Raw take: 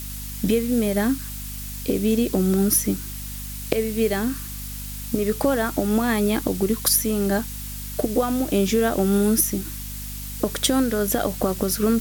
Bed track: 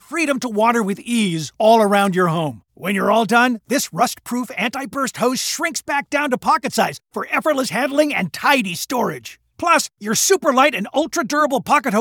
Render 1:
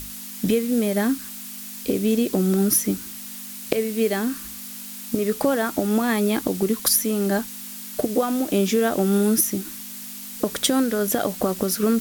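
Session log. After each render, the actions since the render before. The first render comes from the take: hum notches 50/100/150 Hz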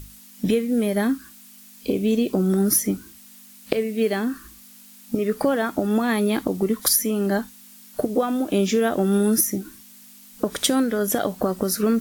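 noise print and reduce 11 dB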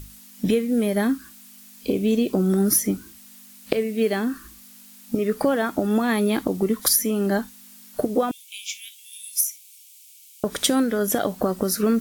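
8.31–10.44 s: rippled Chebyshev high-pass 2.2 kHz, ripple 3 dB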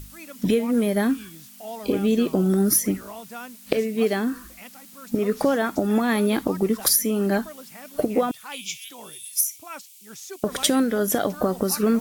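add bed track -24 dB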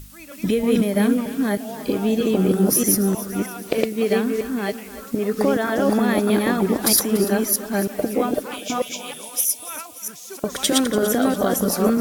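chunks repeated in reverse 315 ms, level 0 dB; two-band feedback delay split 380 Hz, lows 197 ms, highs 289 ms, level -14.5 dB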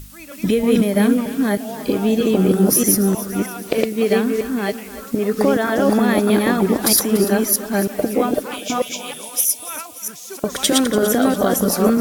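trim +3 dB; peak limiter -3 dBFS, peak gain reduction 2 dB

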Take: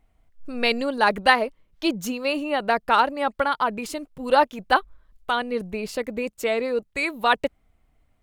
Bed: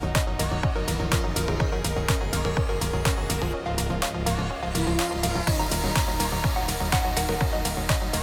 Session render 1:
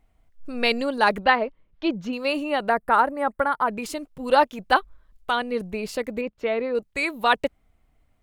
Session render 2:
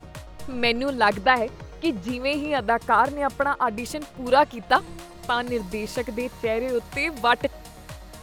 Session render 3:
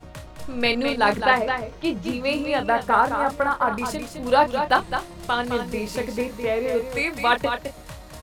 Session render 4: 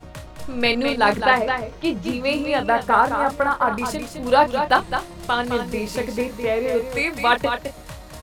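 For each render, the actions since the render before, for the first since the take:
1.24–2.13 s: distance through air 240 m; 2.69–3.68 s: high-order bell 4.1 kHz -13 dB; 6.21–6.75 s: distance through air 290 m
add bed -16.5 dB
doubling 29 ms -8.5 dB; on a send: delay 212 ms -7.5 dB
trim +2 dB; peak limiter -3 dBFS, peak gain reduction 0.5 dB

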